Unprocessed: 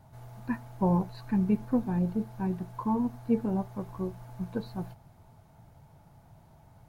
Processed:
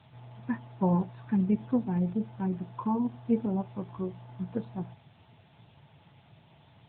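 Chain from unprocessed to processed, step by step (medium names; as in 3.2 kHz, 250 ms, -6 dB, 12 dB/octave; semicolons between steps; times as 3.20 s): added noise blue -50 dBFS; AMR-NB 10.2 kbps 8 kHz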